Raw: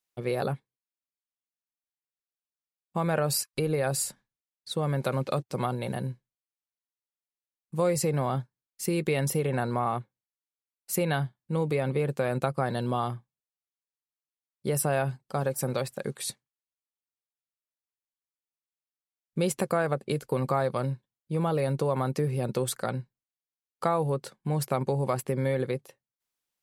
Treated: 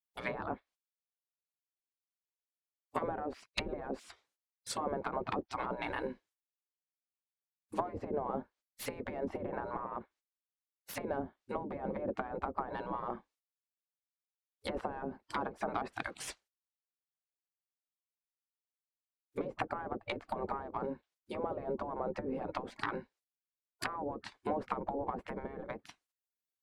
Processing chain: self-modulated delay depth 0.094 ms; treble ducked by the level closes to 390 Hz, closed at -23 dBFS; spectral gate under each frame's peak -15 dB weak; gain +8.5 dB

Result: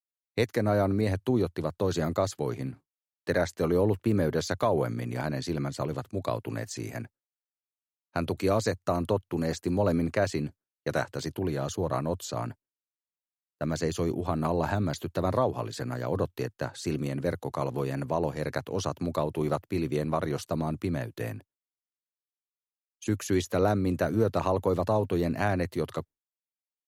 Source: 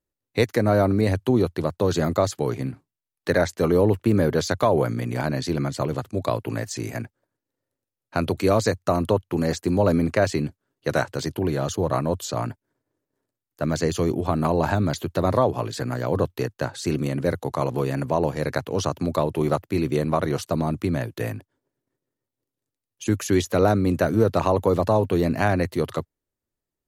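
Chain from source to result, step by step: expander -37 dBFS; gain -6 dB

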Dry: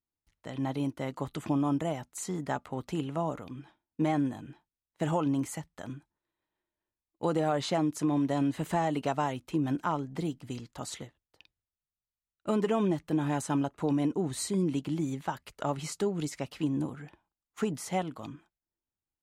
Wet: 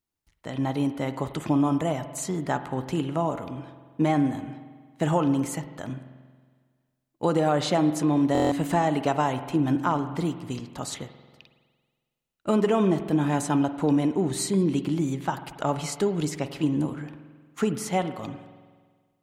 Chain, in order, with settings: reverb RT60 1.6 s, pre-delay 46 ms, DRR 10.5 dB; stuck buffer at 8.33, samples 1024, times 7; gain +5.5 dB

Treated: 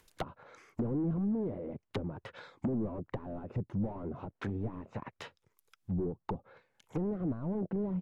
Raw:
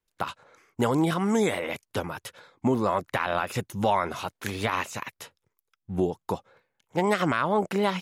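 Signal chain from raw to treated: overloaded stage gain 28 dB; treble ducked by the level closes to 320 Hz, closed at -30.5 dBFS; upward compressor, threshold -55 dBFS; gain +1 dB

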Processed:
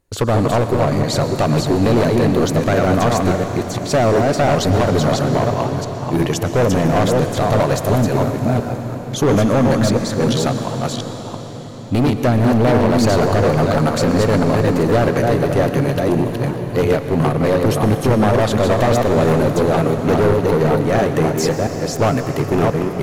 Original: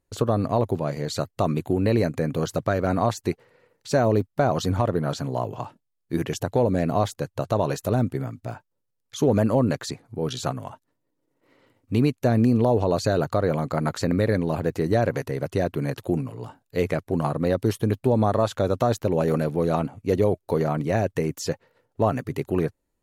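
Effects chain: reverse delay 0.344 s, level -4 dB; hard clip -20.5 dBFS, distortion -8 dB; reverb RT60 5.5 s, pre-delay 0.1 s, DRR 7 dB; gain +9 dB

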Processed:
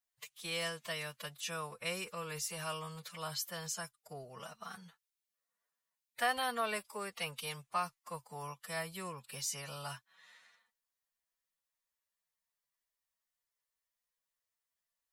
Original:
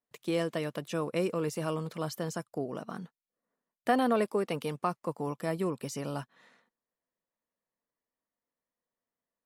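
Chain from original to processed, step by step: time stretch by phase-locked vocoder 1.6×; passive tone stack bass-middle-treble 10-0-10; gain +5.5 dB

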